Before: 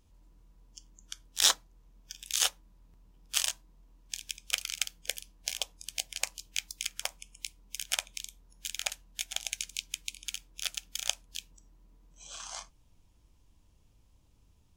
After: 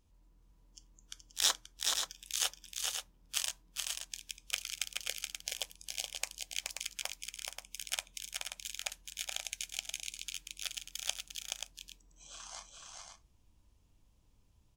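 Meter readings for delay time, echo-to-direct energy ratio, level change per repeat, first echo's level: 425 ms, -2.0 dB, no regular repeats, -4.0 dB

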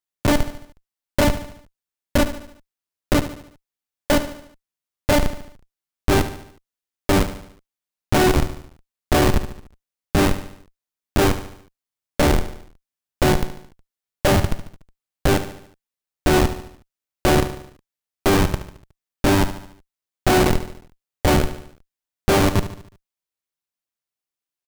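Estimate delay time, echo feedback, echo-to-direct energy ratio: 73 ms, 50%, -11.0 dB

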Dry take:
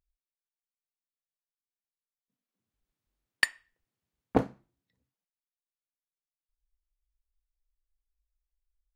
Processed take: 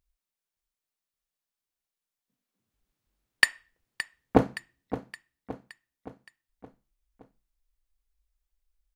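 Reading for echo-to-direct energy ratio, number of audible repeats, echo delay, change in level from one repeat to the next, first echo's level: -11.5 dB, 4, 569 ms, -5.5 dB, -13.0 dB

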